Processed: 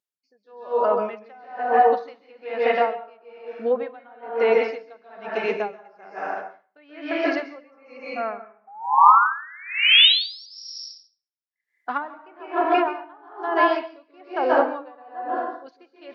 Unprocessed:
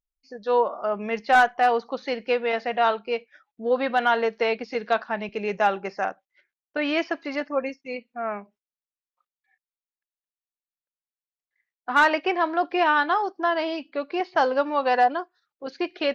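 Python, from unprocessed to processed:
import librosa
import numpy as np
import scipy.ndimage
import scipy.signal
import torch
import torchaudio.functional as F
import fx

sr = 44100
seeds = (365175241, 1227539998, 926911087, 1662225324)

y = scipy.signal.sosfilt(scipy.signal.butter(2, 230.0, 'highpass', fs=sr, output='sos'), x)
y = fx.env_lowpass_down(y, sr, base_hz=880.0, full_db=-16.0)
y = fx.spec_paint(y, sr, seeds[0], shape='rise', start_s=8.67, length_s=1.79, low_hz=770.0, high_hz=5700.0, level_db=-18.0)
y = fx.rev_plate(y, sr, seeds[1], rt60_s=1.1, hf_ratio=0.7, predelay_ms=120, drr_db=-1.0)
y = y * 10.0 ** (-31 * (0.5 - 0.5 * np.cos(2.0 * np.pi * 1.1 * np.arange(len(y)) / sr)) / 20.0)
y = F.gain(torch.from_numpy(y), 3.5).numpy()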